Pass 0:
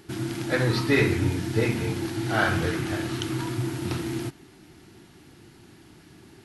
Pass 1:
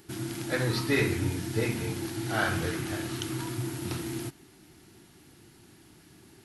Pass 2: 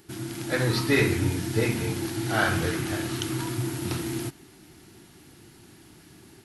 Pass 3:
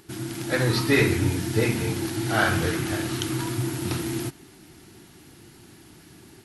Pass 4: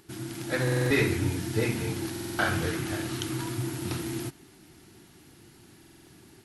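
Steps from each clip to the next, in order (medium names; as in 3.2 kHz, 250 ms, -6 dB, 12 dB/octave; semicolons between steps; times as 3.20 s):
treble shelf 7.4 kHz +10.5 dB; trim -5 dB
level rider gain up to 4 dB
vibrato 15 Hz 25 cents; trim +2 dB
buffer glitch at 0.63/2.11/5.79 s, samples 2048, times 5; trim -4.5 dB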